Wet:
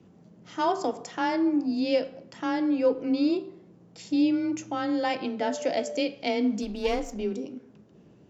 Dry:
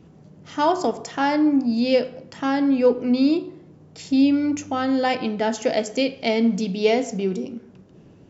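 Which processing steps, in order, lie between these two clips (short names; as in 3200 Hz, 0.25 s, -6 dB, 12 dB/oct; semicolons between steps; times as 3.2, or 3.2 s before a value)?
6.62–7.2 half-wave gain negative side -7 dB; frequency shift +21 Hz; 5.39–5.99 whine 590 Hz -27 dBFS; gain -6 dB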